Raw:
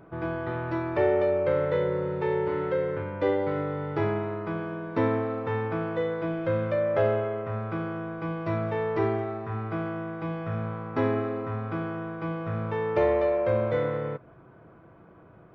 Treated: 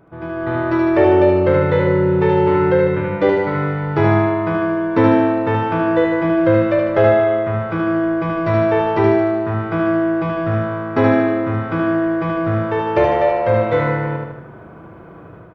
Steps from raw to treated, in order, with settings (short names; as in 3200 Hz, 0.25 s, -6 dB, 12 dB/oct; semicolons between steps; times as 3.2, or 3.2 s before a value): AGC gain up to 11.5 dB; feedback echo 76 ms, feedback 55%, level -3 dB